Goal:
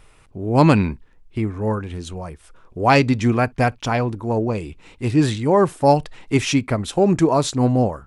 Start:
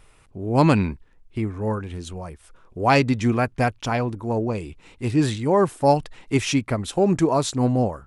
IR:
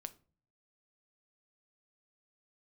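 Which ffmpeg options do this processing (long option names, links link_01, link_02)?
-filter_complex "[0:a]asplit=2[link_01][link_02];[1:a]atrim=start_sample=2205,atrim=end_sample=3087,lowpass=8800[link_03];[link_02][link_03]afir=irnorm=-1:irlink=0,volume=-7.5dB[link_04];[link_01][link_04]amix=inputs=2:normalize=0,volume=1dB"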